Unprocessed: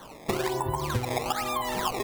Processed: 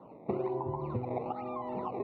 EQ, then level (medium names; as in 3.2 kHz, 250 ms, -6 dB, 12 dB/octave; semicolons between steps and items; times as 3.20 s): boxcar filter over 27 samples; high-pass 140 Hz 12 dB/octave; distance through air 340 m; -1.5 dB